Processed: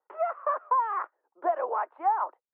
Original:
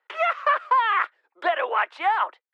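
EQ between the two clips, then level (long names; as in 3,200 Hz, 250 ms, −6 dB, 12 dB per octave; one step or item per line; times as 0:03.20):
transistor ladder low-pass 1,200 Hz, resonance 30%
low-shelf EQ 340 Hz +7 dB
0.0 dB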